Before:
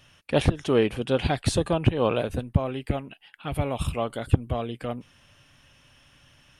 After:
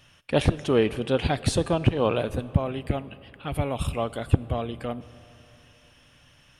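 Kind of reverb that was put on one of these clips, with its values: algorithmic reverb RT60 3.3 s, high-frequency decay 0.7×, pre-delay 5 ms, DRR 17 dB

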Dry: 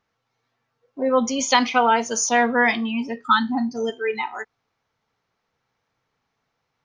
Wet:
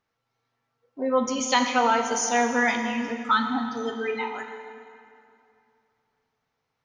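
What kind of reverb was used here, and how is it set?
plate-style reverb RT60 2.6 s, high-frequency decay 0.8×, DRR 4.5 dB; trim -5 dB

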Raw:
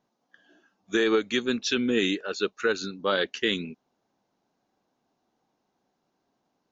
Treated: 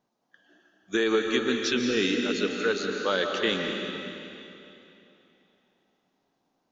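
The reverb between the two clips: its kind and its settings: algorithmic reverb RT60 3 s, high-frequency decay 0.95×, pre-delay 105 ms, DRR 2 dB; trim -1.5 dB

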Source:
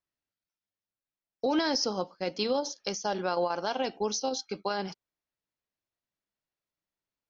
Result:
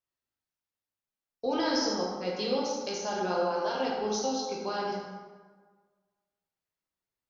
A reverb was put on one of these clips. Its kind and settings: plate-style reverb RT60 1.5 s, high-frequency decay 0.6×, DRR -4.5 dB; trim -6 dB

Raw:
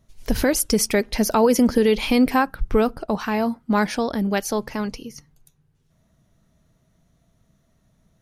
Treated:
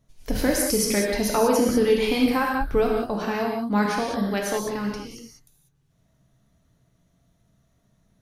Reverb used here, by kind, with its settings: gated-style reverb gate 220 ms flat, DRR -1.5 dB; trim -5.5 dB

